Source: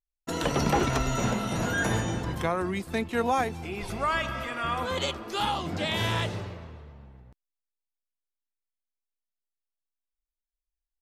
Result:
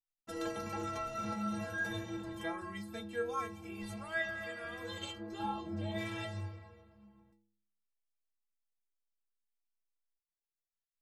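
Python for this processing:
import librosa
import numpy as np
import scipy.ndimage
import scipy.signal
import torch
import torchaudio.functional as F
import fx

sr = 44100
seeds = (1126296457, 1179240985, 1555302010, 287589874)

y = fx.tilt_shelf(x, sr, db=7.5, hz=1400.0, at=(5.17, 5.98))
y = fx.rider(y, sr, range_db=4, speed_s=0.5)
y = fx.stiff_resonator(y, sr, f0_hz=98.0, decay_s=0.81, stiffness=0.03)
y = y * 10.0 ** (1.5 / 20.0)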